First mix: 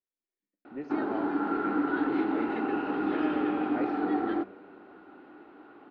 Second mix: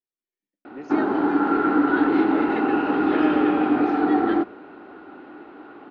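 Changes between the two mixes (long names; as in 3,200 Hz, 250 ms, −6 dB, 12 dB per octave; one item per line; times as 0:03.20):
speech: remove high-frequency loss of the air 220 metres
background +9.0 dB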